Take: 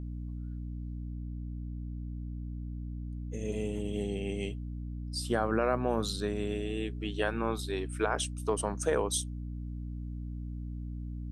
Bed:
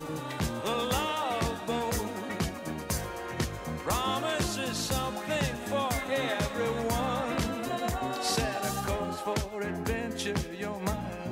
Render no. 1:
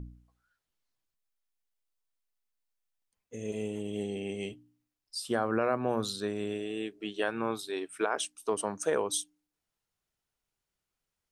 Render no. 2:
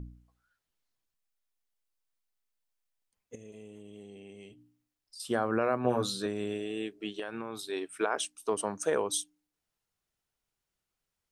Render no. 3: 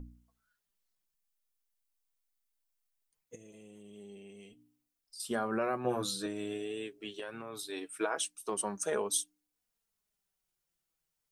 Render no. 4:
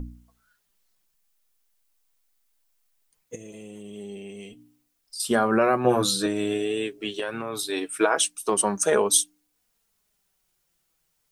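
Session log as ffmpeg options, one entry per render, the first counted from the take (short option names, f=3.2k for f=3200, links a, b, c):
-af "bandreject=f=60:t=h:w=4,bandreject=f=120:t=h:w=4,bandreject=f=180:t=h:w=4,bandreject=f=240:t=h:w=4,bandreject=f=300:t=h:w=4"
-filter_complex "[0:a]asettb=1/sr,asplit=3[a][b][c];[a]atrim=end=3.354[d];[b]atrim=start=3.35:end=5.2,asetpts=PTS-STARTPTS,afade=t=in:d=0.004:c=qsin,afade=t=out:st=1.846:d=0.004:c=qsin,acompressor=threshold=-52dB:ratio=2.5:attack=3.2:release=140:knee=1:detection=peak[e];[c]atrim=start=5.196[f];[d][e]acrossfade=d=0.004:c1=hsin:c2=qsin[g];[g][f]acrossfade=d=0.004:c1=qsin:c2=hsin,asettb=1/sr,asplit=3[h][i][j];[h]atrim=end=5.834[k];[i]atrim=start=5.83:end=6.26,asetpts=PTS-STARTPTS,afade=t=in:d=0.004:c=qsin,afade=t=out:st=0.426:d=0.004:c=qsin,asplit=2[l][m];[m]adelay=16,volume=-3dB[n];[l][n]amix=inputs=2:normalize=0,atrim=end_sample=18963[o];[j]atrim=start=6.256[p];[k][o]acrossfade=d=0.004:c1=hsin:c2=qsin[q];[q][p]acrossfade=d=0.004:c1=qsin:c2=hsin,asettb=1/sr,asplit=3[r][s][t];[r]atrim=end=7.194[u];[s]atrim=start=7.19:end=7.71,asetpts=PTS-STARTPTS,afade=t=in:d=0.004:c=qsin,afade=t=out:st=0.516:d=0.004:c=qsin,acompressor=threshold=-33dB:ratio=5:attack=3.2:release=140:knee=1:detection=peak[v];[t]atrim=start=7.706[w];[u][v]acrossfade=d=0.004:c1=hsin:c2=qsin[x];[x][w]acrossfade=d=0.004:c1=qsin:c2=hsin"
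-af "crystalizer=i=1:c=0,flanger=delay=3.9:depth=3.8:regen=32:speed=0.21:shape=triangular"
-af "volume=12dB"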